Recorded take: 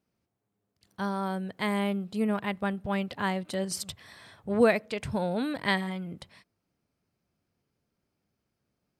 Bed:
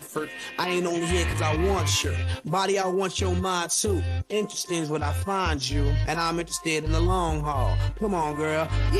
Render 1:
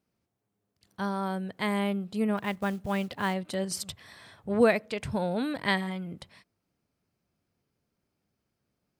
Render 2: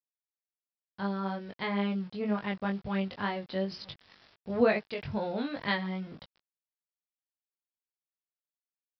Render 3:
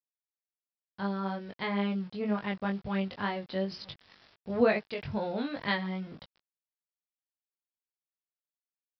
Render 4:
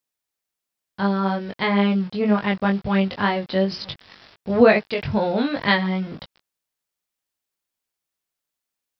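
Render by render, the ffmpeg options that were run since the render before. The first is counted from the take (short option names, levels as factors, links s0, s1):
-filter_complex "[0:a]asettb=1/sr,asplit=3[s0][s1][s2];[s0]atrim=end=2.374[s3];[s1]atrim=start=2.37:end=3.34,asetpts=PTS-STARTPTS,afade=t=in:d=0.004:c=qsin,afade=t=out:st=0.966:d=0.004:c=qsin,acrusher=bits=6:mode=log:mix=0:aa=0.000001[s4];[s2]atrim=start=3.336[s5];[s3][s4]acrossfade=d=0.004:c1=hsin:c2=qsin[s6];[s6][s5]acrossfade=d=0.004:c1=qsin:c2=hsin"
-af "aresample=11025,aeval=exprs='val(0)*gte(abs(val(0)),0.00531)':c=same,aresample=44100,flanger=delay=19:depth=2.3:speed=2.1"
-af anull
-af "volume=3.76,alimiter=limit=0.708:level=0:latency=1"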